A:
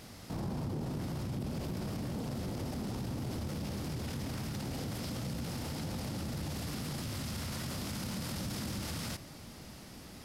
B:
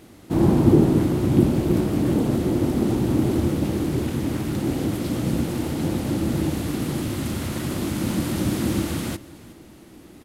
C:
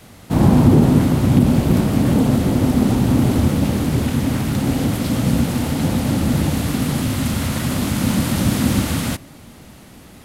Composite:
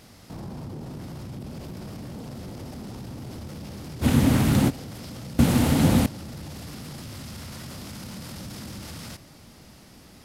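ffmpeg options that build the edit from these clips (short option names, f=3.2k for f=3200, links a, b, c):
-filter_complex "[2:a]asplit=2[a][b];[0:a]asplit=3[c][d][e];[c]atrim=end=4.05[f];[a]atrim=start=4.01:end=4.71[g];[d]atrim=start=4.67:end=5.392[h];[b]atrim=start=5.388:end=6.062[i];[e]atrim=start=6.058[j];[f][g]acrossfade=d=0.04:c1=tri:c2=tri[k];[k][h]acrossfade=d=0.04:c1=tri:c2=tri[l];[l][i]acrossfade=d=0.004:c1=hsin:c2=hsin[m];[m][j]acrossfade=d=0.004:c1=hsin:c2=hsin"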